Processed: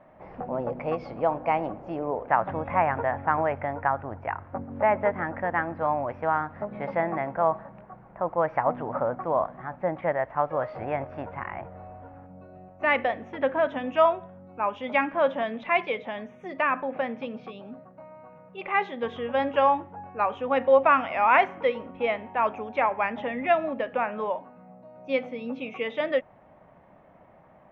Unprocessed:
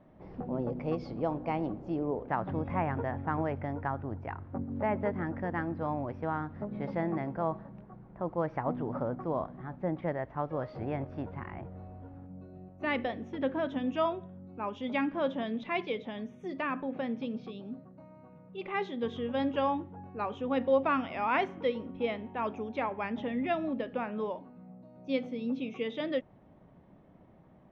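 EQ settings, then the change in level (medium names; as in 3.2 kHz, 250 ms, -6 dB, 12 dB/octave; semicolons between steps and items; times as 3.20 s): high-order bell 1.2 kHz +11.5 dB 2.7 oct; -1.5 dB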